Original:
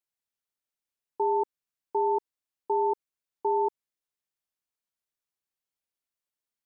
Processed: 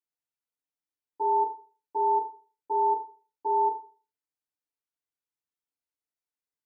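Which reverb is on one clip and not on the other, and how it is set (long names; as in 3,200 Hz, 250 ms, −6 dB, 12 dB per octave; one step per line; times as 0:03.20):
feedback delay network reverb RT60 0.39 s, low-frequency decay 0.9×, high-frequency decay 0.45×, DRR −5 dB
level −11.5 dB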